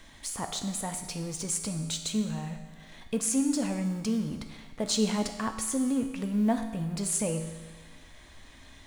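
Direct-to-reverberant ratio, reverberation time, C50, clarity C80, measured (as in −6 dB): 5.0 dB, 1.3 s, 7.5 dB, 9.0 dB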